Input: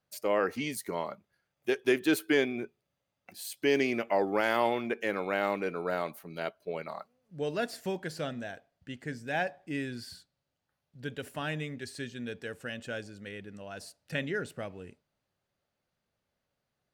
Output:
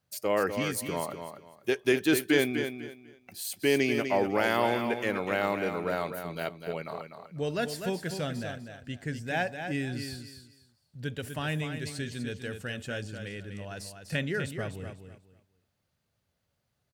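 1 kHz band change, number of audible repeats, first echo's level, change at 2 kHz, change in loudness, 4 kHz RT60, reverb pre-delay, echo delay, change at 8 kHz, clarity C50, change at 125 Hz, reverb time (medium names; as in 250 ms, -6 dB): +1.0 dB, 3, -8.0 dB, +2.0 dB, +2.0 dB, no reverb, no reverb, 248 ms, +5.5 dB, no reverb, +7.0 dB, no reverb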